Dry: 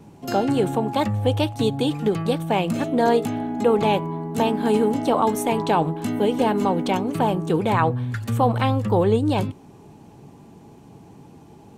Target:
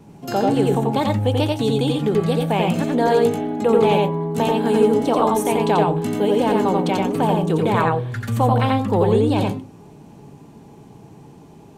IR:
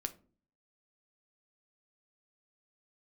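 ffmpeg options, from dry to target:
-filter_complex "[0:a]asplit=2[a][b];[1:a]atrim=start_sample=2205,asetrate=66150,aresample=44100,adelay=87[c];[b][c]afir=irnorm=-1:irlink=0,volume=2.5dB[d];[a][d]amix=inputs=2:normalize=0"

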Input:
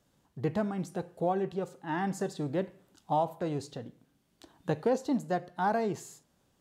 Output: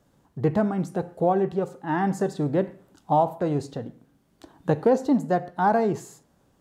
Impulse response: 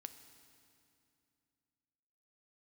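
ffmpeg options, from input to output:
-filter_complex "[0:a]asplit=2[a][b];[1:a]atrim=start_sample=2205,atrim=end_sample=6174,lowpass=2k[c];[b][c]afir=irnorm=-1:irlink=0,volume=5dB[d];[a][d]amix=inputs=2:normalize=0,volume=2.5dB"

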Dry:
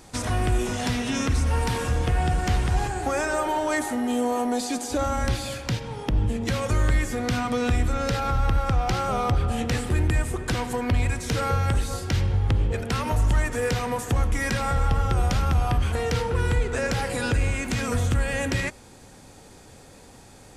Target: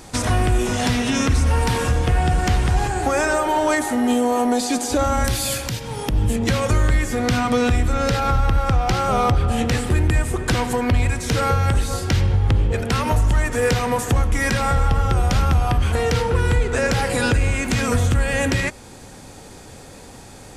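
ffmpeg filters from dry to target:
-filter_complex "[0:a]asettb=1/sr,asplit=3[a][b][c];[a]atrim=end=5.244[d];[b]atrim=start=5.24:end=6.36,asetpts=PTS-STARTPTS,afade=t=in:d=0.004:c=qsin,afade=t=out:st=1.116:d=0.004:c=qsin,aemphasis=mode=production:type=50fm[e];[c]atrim=start=6.356[f];[d][e]acrossfade=d=0.004:c1=hsin:c2=qsin[g];[g][f]acrossfade=d=0.004:c1=qsin:c2=hsin,alimiter=limit=-17dB:level=0:latency=1:release=360,volume=7.5dB"

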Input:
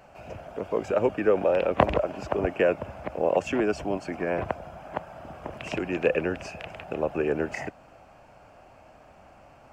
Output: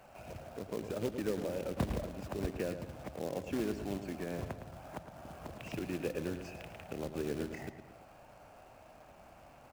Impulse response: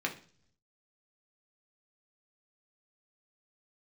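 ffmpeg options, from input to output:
-filter_complex "[0:a]acrossover=split=310[a][b];[b]acompressor=threshold=-44dB:ratio=2.5[c];[a][c]amix=inputs=2:normalize=0,acrusher=bits=3:mode=log:mix=0:aa=0.000001,asplit=2[d][e];[e]adelay=111,lowpass=f=4.2k:p=1,volume=-9dB,asplit=2[f][g];[g]adelay=111,lowpass=f=4.2k:p=1,volume=0.48,asplit=2[h][i];[i]adelay=111,lowpass=f=4.2k:p=1,volume=0.48,asplit=2[j][k];[k]adelay=111,lowpass=f=4.2k:p=1,volume=0.48,asplit=2[l][m];[m]adelay=111,lowpass=f=4.2k:p=1,volume=0.48[n];[d][f][h][j][l][n]amix=inputs=6:normalize=0,volume=-5dB"

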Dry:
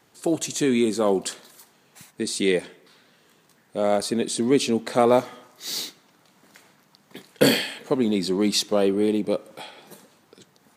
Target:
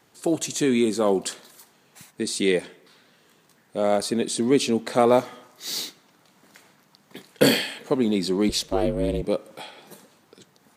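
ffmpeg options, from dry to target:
-filter_complex "[0:a]asettb=1/sr,asplit=3[a][b][c];[a]atrim=end=8.494[d];[b]atrim=start=8.49:end=9.22,asetpts=PTS-STARTPTS,afade=t=in:d=0.004:c=qsin,afade=t=out:st=0.726:d=0.004:c=qsin,aeval=exprs='val(0)*sin(2*PI*150*n/s)':c=same[e];[c]atrim=start=9.216[f];[d][e]acrossfade=d=0.004:c1=hsin:c2=qsin[g];[g][f]acrossfade=d=0.004:c1=qsin:c2=hsin"

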